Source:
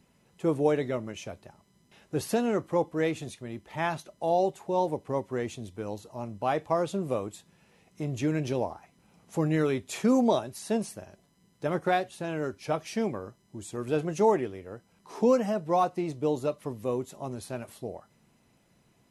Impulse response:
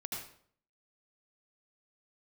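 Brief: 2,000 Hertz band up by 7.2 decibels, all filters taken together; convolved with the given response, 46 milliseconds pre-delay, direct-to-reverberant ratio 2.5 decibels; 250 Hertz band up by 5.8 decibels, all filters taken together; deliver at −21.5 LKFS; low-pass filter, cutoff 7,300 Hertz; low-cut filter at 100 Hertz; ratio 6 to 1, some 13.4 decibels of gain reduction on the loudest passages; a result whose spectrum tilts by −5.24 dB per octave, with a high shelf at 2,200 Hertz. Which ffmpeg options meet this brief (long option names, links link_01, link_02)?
-filter_complex "[0:a]highpass=100,lowpass=7300,equalizer=frequency=250:width_type=o:gain=7,equalizer=frequency=2000:width_type=o:gain=5,highshelf=frequency=2200:gain=7.5,acompressor=threshold=-28dB:ratio=6,asplit=2[link_01][link_02];[1:a]atrim=start_sample=2205,adelay=46[link_03];[link_02][link_03]afir=irnorm=-1:irlink=0,volume=-3dB[link_04];[link_01][link_04]amix=inputs=2:normalize=0,volume=10.5dB"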